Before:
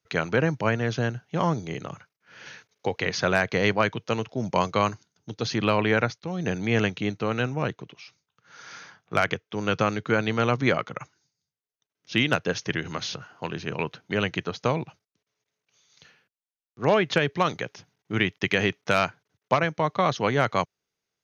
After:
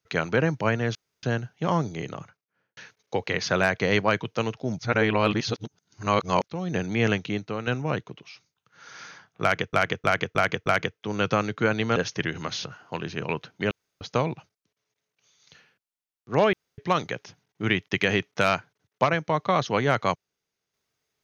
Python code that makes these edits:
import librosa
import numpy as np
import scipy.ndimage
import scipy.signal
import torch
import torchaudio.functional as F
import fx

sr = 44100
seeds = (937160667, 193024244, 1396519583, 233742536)

y = fx.studio_fade_out(x, sr, start_s=1.81, length_s=0.68)
y = fx.edit(y, sr, fx.insert_room_tone(at_s=0.95, length_s=0.28),
    fx.reverse_span(start_s=4.51, length_s=1.65),
    fx.fade_out_to(start_s=6.95, length_s=0.44, floor_db=-7.0),
    fx.repeat(start_s=9.14, length_s=0.31, count=5),
    fx.cut(start_s=10.44, length_s=2.02),
    fx.room_tone_fill(start_s=14.21, length_s=0.3),
    fx.room_tone_fill(start_s=17.03, length_s=0.25), tone=tone)